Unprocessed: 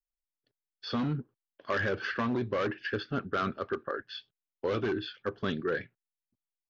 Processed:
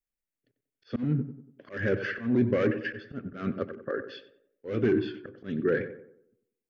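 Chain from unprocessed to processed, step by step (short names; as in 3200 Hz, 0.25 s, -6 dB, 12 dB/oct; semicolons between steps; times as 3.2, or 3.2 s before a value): ten-band EQ 125 Hz +7 dB, 250 Hz +8 dB, 500 Hz +5 dB, 1000 Hz -9 dB, 2000 Hz +7 dB, 4000 Hz -8 dB; auto swell 0.219 s; tape echo 93 ms, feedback 50%, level -9.5 dB, low-pass 1400 Hz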